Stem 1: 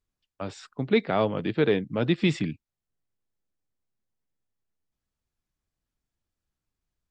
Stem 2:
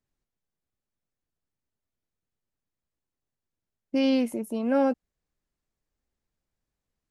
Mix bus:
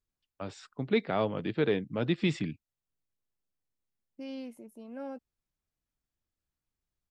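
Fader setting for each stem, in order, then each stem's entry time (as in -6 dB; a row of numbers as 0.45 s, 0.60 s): -5.0 dB, -17.5 dB; 0.00 s, 0.25 s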